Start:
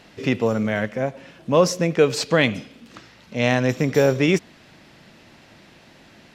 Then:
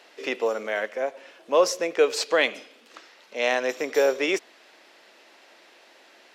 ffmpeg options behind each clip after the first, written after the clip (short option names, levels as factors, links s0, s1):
-af "highpass=f=380:w=0.5412,highpass=f=380:w=1.3066,volume=0.794"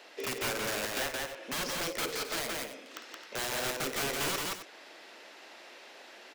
-filter_complex "[0:a]acrossover=split=2400|5200[s0][s1][s2];[s0]acompressor=threshold=0.0316:ratio=4[s3];[s1]acompressor=threshold=0.00447:ratio=4[s4];[s2]acompressor=threshold=0.00178:ratio=4[s5];[s3][s4][s5]amix=inputs=3:normalize=0,aeval=exprs='(mod(28.2*val(0)+1,2)-1)/28.2':c=same,asplit=2[s6][s7];[s7]aecho=0:1:52.48|172|265.3:0.282|0.794|0.251[s8];[s6][s8]amix=inputs=2:normalize=0"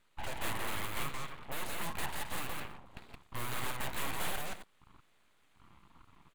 -af "afwtdn=0.00562,aeval=exprs='abs(val(0))':c=same,equalizer=f=5400:t=o:w=0.62:g=-12,volume=1.12"